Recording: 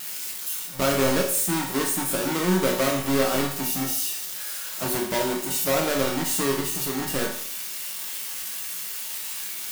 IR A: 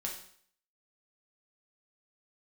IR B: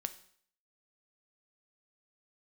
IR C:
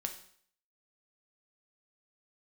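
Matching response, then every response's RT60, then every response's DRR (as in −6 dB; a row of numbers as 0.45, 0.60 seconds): A; 0.60, 0.60, 0.60 seconds; −1.5, 9.5, 4.5 decibels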